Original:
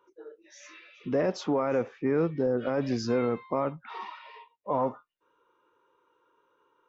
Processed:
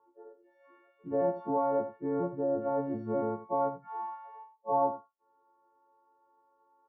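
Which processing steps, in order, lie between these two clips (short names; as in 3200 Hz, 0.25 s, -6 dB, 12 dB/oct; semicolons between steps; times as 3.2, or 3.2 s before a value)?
frequency quantiser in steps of 4 st; ladder low-pass 1000 Hz, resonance 50%; echo 83 ms -13 dB; gain +2.5 dB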